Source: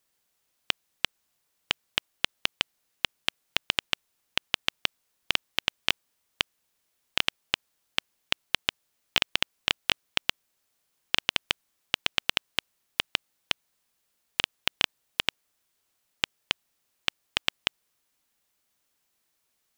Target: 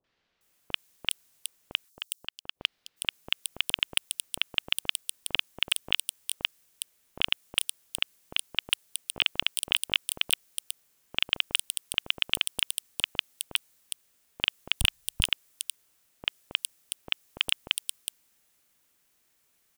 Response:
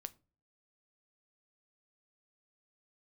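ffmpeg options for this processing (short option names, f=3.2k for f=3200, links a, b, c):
-filter_complex "[0:a]asplit=3[a][b][c];[a]afade=t=out:st=1.84:d=0.02[d];[b]agate=range=-19dB:threshold=-29dB:ratio=16:detection=peak,afade=t=in:st=1.84:d=0.02,afade=t=out:st=2.55:d=0.02[e];[c]afade=t=in:st=2.55:d=0.02[f];[d][e][f]amix=inputs=3:normalize=0,asplit=3[g][h][i];[g]afade=t=out:st=14.8:d=0.02[j];[h]asubboost=boost=9:cutoff=92,afade=t=in:st=14.8:d=0.02,afade=t=out:st=15.25:d=0.02[k];[i]afade=t=in:st=15.25:d=0.02[l];[j][k][l]amix=inputs=3:normalize=0,asoftclip=type=hard:threshold=-14dB,acrossover=split=860|4400[m][n][o];[n]adelay=40[p];[o]adelay=410[q];[m][p][q]amix=inputs=3:normalize=0,adynamicequalizer=threshold=0.00398:dfrequency=3400:dqfactor=0.7:tfrequency=3400:tqfactor=0.7:attack=5:release=100:ratio=0.375:range=3:mode=boostabove:tftype=highshelf,volume=6dB"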